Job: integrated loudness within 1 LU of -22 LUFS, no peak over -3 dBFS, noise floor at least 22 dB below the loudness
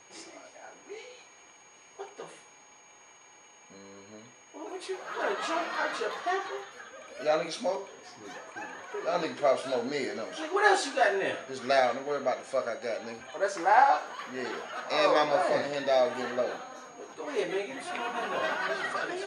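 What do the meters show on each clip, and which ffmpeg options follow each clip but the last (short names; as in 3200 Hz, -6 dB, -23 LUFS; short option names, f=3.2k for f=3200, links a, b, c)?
steady tone 6600 Hz; tone level -57 dBFS; loudness -29.5 LUFS; peak -8.5 dBFS; loudness target -22.0 LUFS
-> -af "bandreject=f=6.6k:w=30"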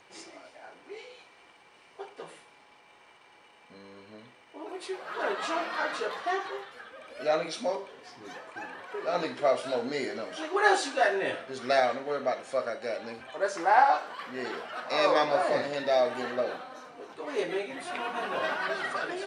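steady tone none; loudness -29.5 LUFS; peak -8.5 dBFS; loudness target -22.0 LUFS
-> -af "volume=7.5dB,alimiter=limit=-3dB:level=0:latency=1"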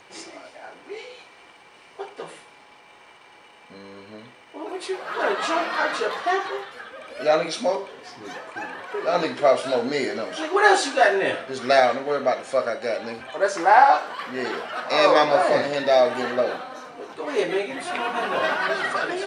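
loudness -22.0 LUFS; peak -3.0 dBFS; noise floor -50 dBFS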